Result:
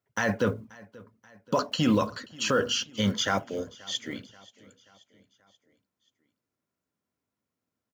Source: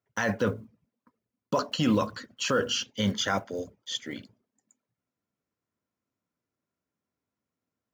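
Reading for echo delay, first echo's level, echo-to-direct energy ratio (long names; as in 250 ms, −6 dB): 532 ms, −22.5 dB, −21.0 dB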